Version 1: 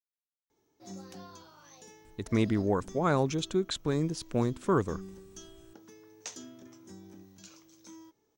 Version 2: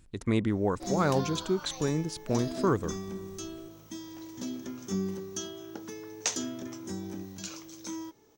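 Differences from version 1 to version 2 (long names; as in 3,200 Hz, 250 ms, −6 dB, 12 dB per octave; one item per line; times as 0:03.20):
speech: entry −2.05 s
background +12.0 dB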